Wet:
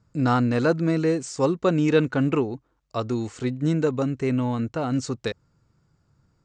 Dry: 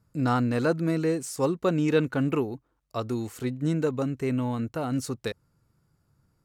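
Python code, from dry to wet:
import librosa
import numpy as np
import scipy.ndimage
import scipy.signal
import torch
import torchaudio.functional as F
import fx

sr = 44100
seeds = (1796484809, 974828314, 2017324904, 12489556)

y = scipy.signal.sosfilt(scipy.signal.butter(8, 7800.0, 'lowpass', fs=sr, output='sos'), x)
y = y * 10.0 ** (3.5 / 20.0)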